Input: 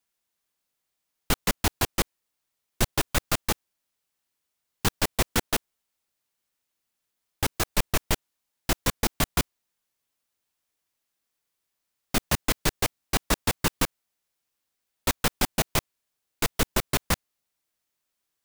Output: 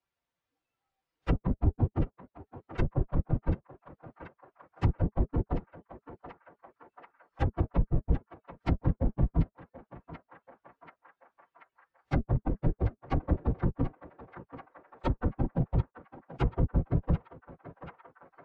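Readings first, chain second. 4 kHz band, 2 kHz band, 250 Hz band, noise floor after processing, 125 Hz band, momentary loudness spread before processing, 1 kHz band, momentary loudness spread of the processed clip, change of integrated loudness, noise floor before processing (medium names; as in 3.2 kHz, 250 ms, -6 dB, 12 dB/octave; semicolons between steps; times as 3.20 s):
under -25 dB, -16.5 dB, -0.5 dB, under -85 dBFS, +4.5 dB, 5 LU, -8.5 dB, 20 LU, -4.5 dB, -82 dBFS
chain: phase randomisation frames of 50 ms; spectral noise reduction 14 dB; peaking EQ 300 Hz -3 dB 0.43 oct; in parallel at +1.5 dB: peak limiter -16.5 dBFS, peak gain reduction 7 dB; on the sum: low-pass that closes with the level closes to 300 Hz, closed at -18.5 dBFS; tape spacing loss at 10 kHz 30 dB; comb of notches 210 Hz; on a send: band-passed feedback delay 734 ms, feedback 61%, band-pass 1.6 kHz, level -10.5 dB; on the sum: three bands compressed up and down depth 40%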